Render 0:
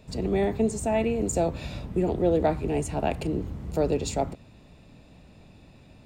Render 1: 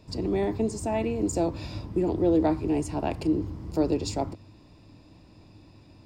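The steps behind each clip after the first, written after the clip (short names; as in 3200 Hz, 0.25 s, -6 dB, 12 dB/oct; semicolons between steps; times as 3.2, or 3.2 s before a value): thirty-one-band EQ 100 Hz +10 dB, 315 Hz +12 dB, 1000 Hz +8 dB, 5000 Hz +11 dB; gain -4.5 dB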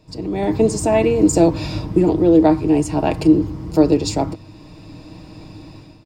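comb 6.4 ms, depth 42%; AGC gain up to 14 dB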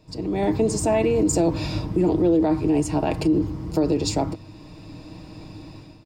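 limiter -10 dBFS, peak gain reduction 8.5 dB; gain -2 dB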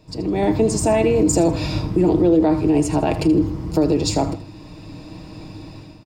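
feedback echo 79 ms, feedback 30%, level -13.5 dB; gain +3.5 dB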